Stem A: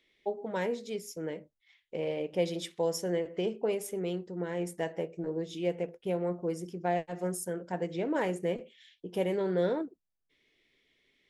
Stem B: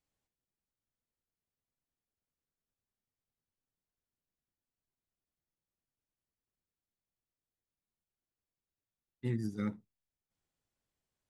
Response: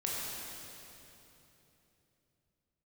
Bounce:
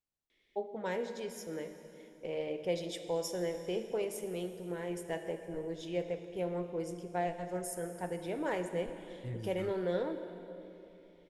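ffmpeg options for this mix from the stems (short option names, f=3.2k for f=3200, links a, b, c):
-filter_complex "[0:a]adelay=300,volume=-5.5dB,asplit=2[a][b];[b]volume=-10dB[c];[1:a]volume=-8dB[d];[2:a]atrim=start_sample=2205[e];[c][e]afir=irnorm=-1:irlink=0[f];[a][d][f]amix=inputs=3:normalize=0,asubboost=boost=8:cutoff=68"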